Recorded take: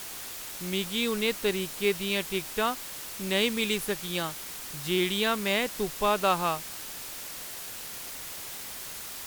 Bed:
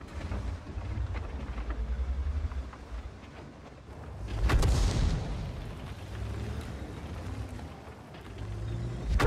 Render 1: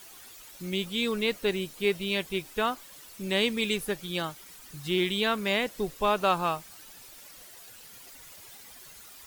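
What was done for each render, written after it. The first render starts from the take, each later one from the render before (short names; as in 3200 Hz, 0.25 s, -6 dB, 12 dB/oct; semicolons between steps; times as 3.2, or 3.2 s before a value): denoiser 12 dB, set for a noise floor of -40 dBFS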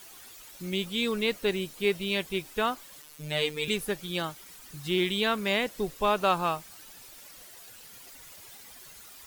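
3.02–3.68 robotiser 151 Hz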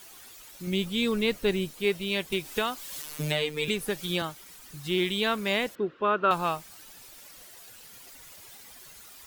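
0.67–1.71 low shelf 200 Hz +8.5 dB; 2.32–4.22 three-band squash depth 100%; 5.75–6.31 speaker cabinet 170–2800 Hz, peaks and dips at 340 Hz +7 dB, 770 Hz -9 dB, 1400 Hz +8 dB, 2200 Hz -7 dB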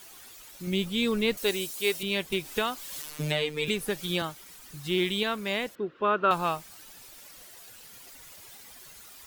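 1.37–2.03 tone controls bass -13 dB, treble +11 dB; 3.1–3.67 high shelf 9100 Hz -5.5 dB; 5.23–5.95 gain -3 dB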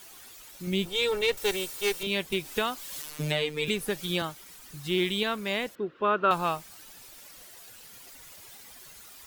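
0.85–2.07 minimum comb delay 2.2 ms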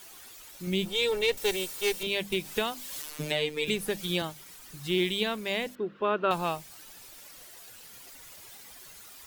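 notches 50/100/150/200/250 Hz; dynamic EQ 1300 Hz, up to -6 dB, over -44 dBFS, Q 2.2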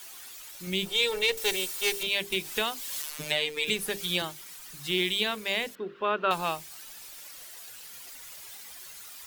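tilt shelf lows -4 dB, about 810 Hz; notches 50/100/150/200/250/300/350/400/450 Hz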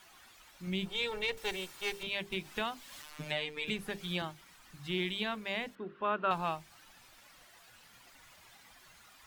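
LPF 1100 Hz 6 dB/oct; bell 440 Hz -8 dB 0.91 oct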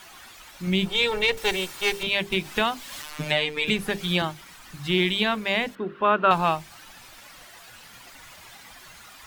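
gain +12 dB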